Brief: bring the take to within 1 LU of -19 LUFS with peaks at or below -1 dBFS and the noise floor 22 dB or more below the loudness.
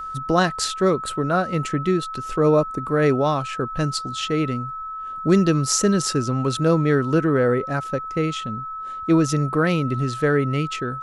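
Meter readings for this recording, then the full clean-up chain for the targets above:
steady tone 1.3 kHz; tone level -29 dBFS; loudness -21.5 LUFS; peak level -4.5 dBFS; loudness target -19.0 LUFS
-> band-stop 1.3 kHz, Q 30; trim +2.5 dB

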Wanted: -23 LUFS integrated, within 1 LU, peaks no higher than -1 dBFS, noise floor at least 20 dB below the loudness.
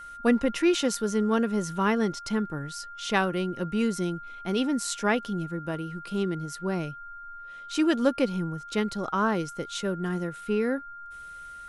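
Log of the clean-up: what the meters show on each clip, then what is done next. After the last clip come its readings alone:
steady tone 1.4 kHz; tone level -40 dBFS; loudness -28.0 LUFS; peak level -9.0 dBFS; loudness target -23.0 LUFS
-> band-stop 1.4 kHz, Q 30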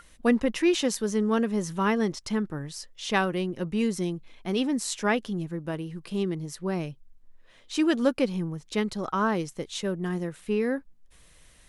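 steady tone not found; loudness -28.0 LUFS; peak level -9.5 dBFS; loudness target -23.0 LUFS
-> trim +5 dB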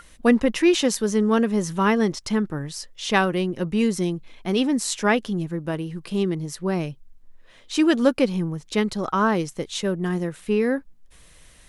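loudness -23.0 LUFS; peak level -4.5 dBFS; noise floor -51 dBFS

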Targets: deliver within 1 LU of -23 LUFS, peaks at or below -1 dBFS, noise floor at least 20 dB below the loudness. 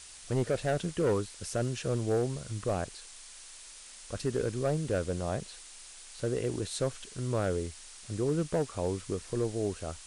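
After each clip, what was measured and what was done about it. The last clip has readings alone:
clipped samples 1.1%; clipping level -22.5 dBFS; noise floor -50 dBFS; noise floor target -53 dBFS; loudness -33.0 LUFS; peak level -22.5 dBFS; loudness target -23.0 LUFS
-> clip repair -22.5 dBFS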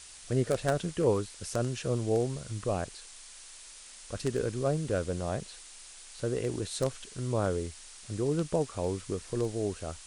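clipped samples 0.0%; noise floor -50 dBFS; noise floor target -52 dBFS
-> noise reduction 6 dB, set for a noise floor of -50 dBFS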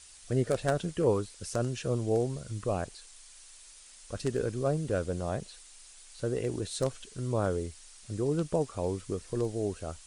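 noise floor -53 dBFS; loudness -32.5 LUFS; peak level -13.5 dBFS; loudness target -23.0 LUFS
-> trim +9.5 dB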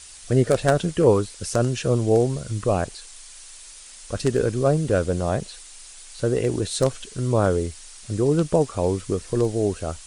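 loudness -23.0 LUFS; peak level -4.0 dBFS; noise floor -44 dBFS

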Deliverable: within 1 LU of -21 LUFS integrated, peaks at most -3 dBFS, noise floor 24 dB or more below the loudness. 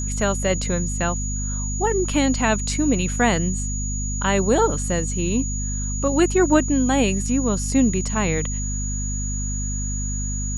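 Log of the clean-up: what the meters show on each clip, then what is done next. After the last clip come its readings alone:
hum 50 Hz; highest harmonic 250 Hz; hum level -24 dBFS; steady tone 6.8 kHz; tone level -29 dBFS; loudness -22.0 LUFS; peak level -4.0 dBFS; loudness target -21.0 LUFS
-> de-hum 50 Hz, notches 5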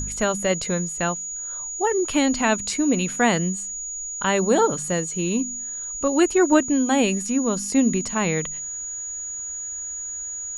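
hum not found; steady tone 6.8 kHz; tone level -29 dBFS
-> band-stop 6.8 kHz, Q 30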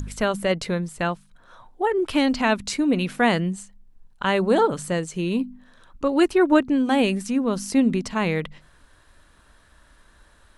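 steady tone not found; loudness -22.5 LUFS; peak level -5.0 dBFS; loudness target -21.0 LUFS
-> trim +1.5 dB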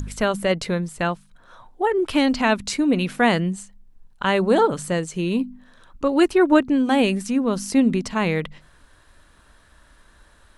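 loudness -21.0 LUFS; peak level -3.5 dBFS; noise floor -55 dBFS

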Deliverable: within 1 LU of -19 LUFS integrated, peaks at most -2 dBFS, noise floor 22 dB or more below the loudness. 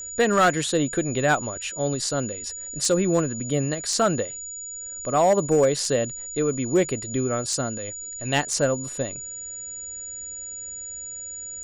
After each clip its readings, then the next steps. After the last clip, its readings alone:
clipped samples 0.3%; clipping level -12.5 dBFS; steady tone 6.9 kHz; tone level -33 dBFS; loudness -24.5 LUFS; peak level -12.5 dBFS; loudness target -19.0 LUFS
-> clip repair -12.5 dBFS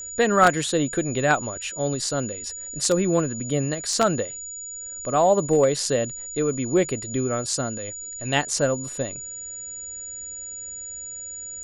clipped samples 0.0%; steady tone 6.9 kHz; tone level -33 dBFS
-> band-stop 6.9 kHz, Q 30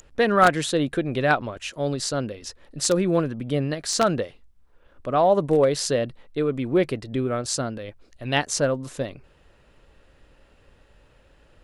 steady tone not found; loudness -23.5 LUFS; peak level -3.5 dBFS; loudness target -19.0 LUFS
-> trim +4.5 dB; peak limiter -2 dBFS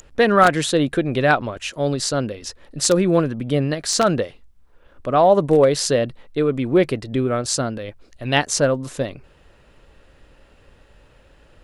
loudness -19.5 LUFS; peak level -2.0 dBFS; noise floor -53 dBFS

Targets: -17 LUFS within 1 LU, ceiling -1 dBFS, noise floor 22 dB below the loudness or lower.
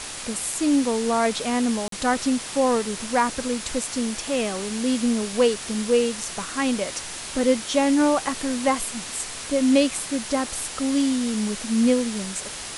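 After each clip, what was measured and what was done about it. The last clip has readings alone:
dropouts 1; longest dropout 43 ms; noise floor -35 dBFS; noise floor target -46 dBFS; loudness -23.5 LUFS; peak level -6.0 dBFS; loudness target -17.0 LUFS
-> interpolate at 1.88 s, 43 ms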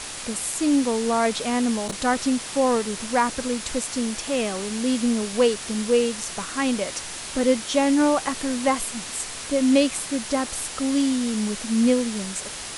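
dropouts 0; noise floor -35 dBFS; noise floor target -46 dBFS
-> noise print and reduce 11 dB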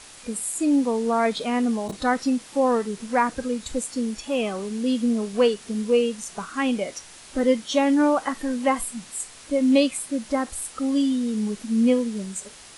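noise floor -45 dBFS; noise floor target -46 dBFS
-> noise print and reduce 6 dB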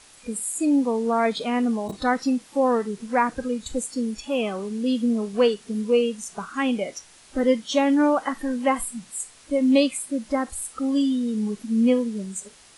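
noise floor -51 dBFS; loudness -24.0 LUFS; peak level -6.5 dBFS; loudness target -17.0 LUFS
-> trim +7 dB; peak limiter -1 dBFS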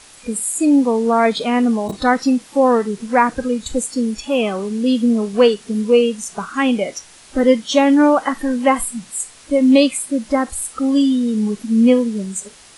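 loudness -17.0 LUFS; peak level -1.0 dBFS; noise floor -44 dBFS

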